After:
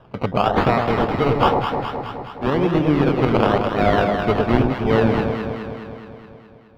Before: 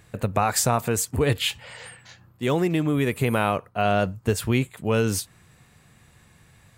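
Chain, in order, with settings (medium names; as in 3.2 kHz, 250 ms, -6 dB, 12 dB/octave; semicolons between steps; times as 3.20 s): high-pass 140 Hz 12 dB/octave; peaking EQ 3.3 kHz +12.5 dB 0.81 oct; gate with hold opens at -43 dBFS; in parallel at 0 dB: gain riding 0.5 s; on the sum: decimation with a swept rate 20×, swing 60% 1 Hz; distance through air 360 m; on a send: echo whose repeats swap between lows and highs 105 ms, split 920 Hz, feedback 79%, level -3 dB; on the sum: trim -2 dB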